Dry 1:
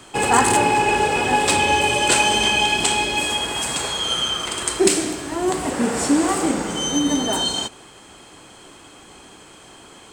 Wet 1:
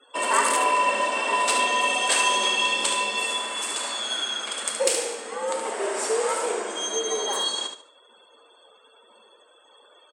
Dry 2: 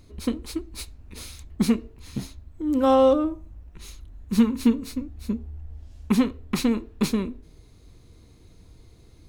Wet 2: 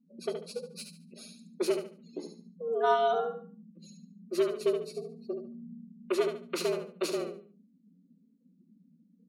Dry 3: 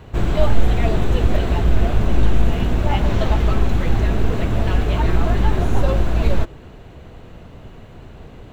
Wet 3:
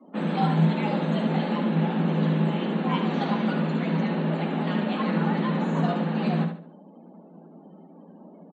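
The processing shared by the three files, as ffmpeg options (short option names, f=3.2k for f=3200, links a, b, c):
-filter_complex "[0:a]lowshelf=f=370:g=-5.5,afreqshift=160,afftdn=nr=35:nf=-43,asplit=2[a][b];[b]aecho=0:1:72|144|216|288:0.447|0.13|0.0376|0.0109[c];[a][c]amix=inputs=2:normalize=0,volume=-5dB"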